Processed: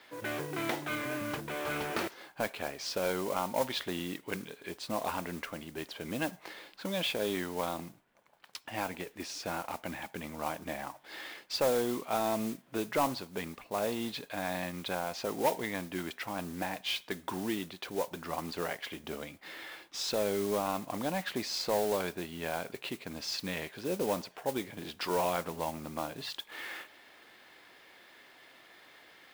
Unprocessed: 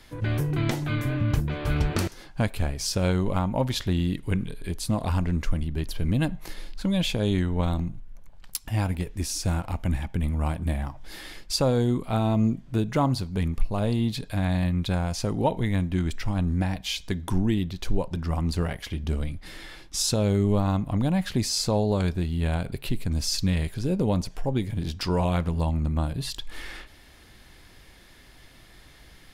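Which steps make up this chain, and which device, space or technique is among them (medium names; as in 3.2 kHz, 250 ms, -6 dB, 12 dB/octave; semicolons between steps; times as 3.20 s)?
carbon microphone (band-pass 430–3400 Hz; saturation -20 dBFS, distortion -17 dB; modulation noise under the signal 13 dB)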